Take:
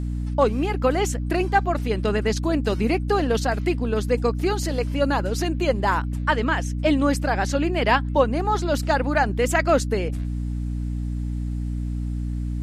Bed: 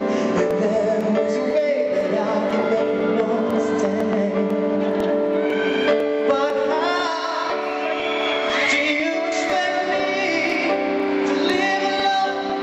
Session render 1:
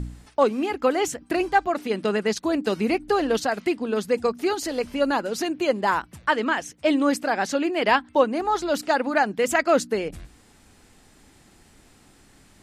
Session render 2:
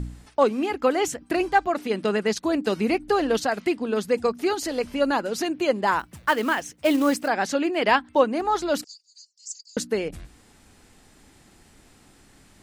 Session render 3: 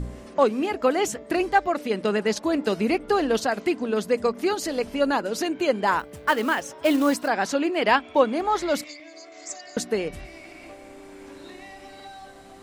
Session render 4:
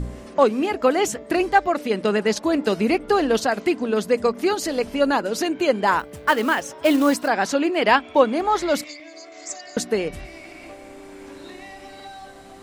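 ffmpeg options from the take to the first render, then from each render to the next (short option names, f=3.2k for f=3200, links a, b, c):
-af "bandreject=f=60:t=h:w=4,bandreject=f=120:t=h:w=4,bandreject=f=180:t=h:w=4,bandreject=f=240:t=h:w=4,bandreject=f=300:t=h:w=4"
-filter_complex "[0:a]asettb=1/sr,asplit=3[a][b][c];[a]atrim=end=5.994[d];[b]atrim=start=5.99:end=7.28,asetpts=PTS-STARTPTS,afade=t=in:d=0.004:c=qsin,afade=t=out:st=1.286:d=0.004:c=qsin,acrusher=bits=5:mode=log:mix=0:aa=0.000001[e];[c]atrim=start=7.276[f];[d][e]acrossfade=d=0.004:c1=hsin:c2=qsin[g];[g][f]acrossfade=d=0.004:c1=qsin:c2=hsin,asettb=1/sr,asplit=3[h][i][j];[h]atrim=end=8.844[k];[i]atrim=start=8.84:end=9.77,asetpts=PTS-STARTPTS,afade=t=in:d=0.004:c=qsin,afade=t=out:st=0.926:d=0.004:c=qsin,asuperpass=centerf=6000:order=8:qfactor=2[l];[j]atrim=start=9.766[m];[k][l]acrossfade=d=0.004:c1=hsin:c2=qsin[n];[n][m]acrossfade=d=0.004:c1=qsin:c2=hsin"
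-filter_complex "[1:a]volume=-23.5dB[a];[0:a][a]amix=inputs=2:normalize=0"
-af "volume=3dB"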